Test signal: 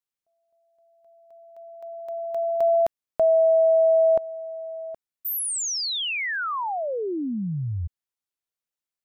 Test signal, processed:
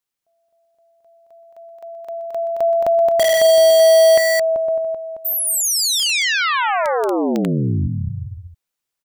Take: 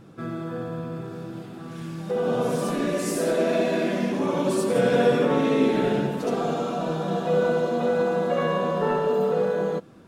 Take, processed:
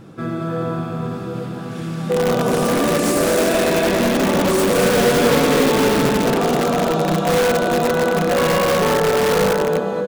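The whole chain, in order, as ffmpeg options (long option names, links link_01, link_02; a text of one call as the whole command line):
ffmpeg -i in.wav -filter_complex "[0:a]aecho=1:1:220|385|508.8|601.6|671.2:0.631|0.398|0.251|0.158|0.1,asplit=2[link_01][link_02];[link_02]aeval=exprs='(mod(7.08*val(0)+1,2)-1)/7.08':channel_layout=same,volume=-3dB[link_03];[link_01][link_03]amix=inputs=2:normalize=0,volume=2.5dB" out.wav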